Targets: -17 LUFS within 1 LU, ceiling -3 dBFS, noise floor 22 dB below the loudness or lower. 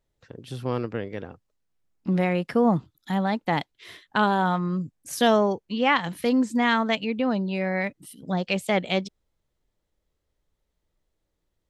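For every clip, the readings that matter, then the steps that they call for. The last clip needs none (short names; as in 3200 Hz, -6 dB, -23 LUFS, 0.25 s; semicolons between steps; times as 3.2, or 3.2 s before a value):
loudness -25.0 LUFS; peak -8.0 dBFS; loudness target -17.0 LUFS
-> gain +8 dB; limiter -3 dBFS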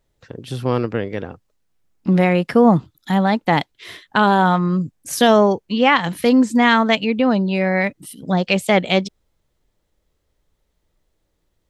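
loudness -17.5 LUFS; peak -3.0 dBFS; noise floor -70 dBFS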